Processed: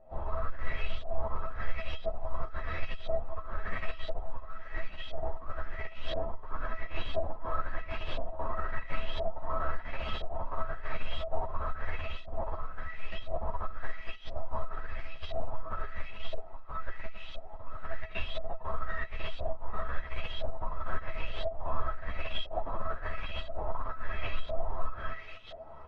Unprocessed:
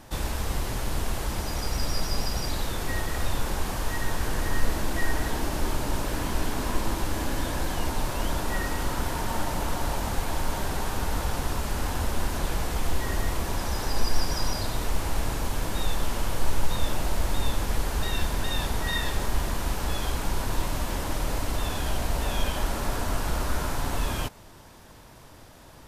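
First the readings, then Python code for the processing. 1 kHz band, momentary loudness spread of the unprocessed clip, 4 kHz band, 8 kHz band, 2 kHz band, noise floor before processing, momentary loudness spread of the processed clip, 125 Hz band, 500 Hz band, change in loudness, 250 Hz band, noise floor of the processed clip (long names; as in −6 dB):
−6.5 dB, 2 LU, −11.0 dB, below −35 dB, −7.5 dB, −48 dBFS, 7 LU, −11.5 dB, −4.0 dB, −9.0 dB, −17.0 dB, −43 dBFS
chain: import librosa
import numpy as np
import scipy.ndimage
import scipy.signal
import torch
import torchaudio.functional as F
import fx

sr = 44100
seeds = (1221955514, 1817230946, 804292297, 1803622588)

y = fx.high_shelf(x, sr, hz=7800.0, db=7.0)
y = y + 10.0 ** (-4.5 / 20.0) * np.pad(y, (int(845 * sr / 1000.0), 0))[:len(y)]
y = fx.over_compress(y, sr, threshold_db=-27.0, ratio=-0.5)
y = y + 0.36 * np.pad(y, (int(1.8 * sr / 1000.0), 0))[:len(y)]
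y = fx.quant_dither(y, sr, seeds[0], bits=6, dither='triangular')
y = fx.volume_shaper(y, sr, bpm=123, per_beat=1, depth_db=-12, release_ms=96.0, shape='slow start')
y = np.clip(10.0 ** (18.5 / 20.0) * y, -1.0, 1.0) / 10.0 ** (18.5 / 20.0)
y = fx.comb_fb(y, sr, f0_hz=650.0, decay_s=0.19, harmonics='all', damping=0.0, mix_pct=90)
y = fx.filter_lfo_lowpass(y, sr, shape='saw_up', hz=0.98, low_hz=620.0, high_hz=3600.0, q=5.1)
y = fx.air_absorb(y, sr, metres=150.0)
y = fx.ensemble(y, sr)
y = y * 10.0 ** (6.5 / 20.0)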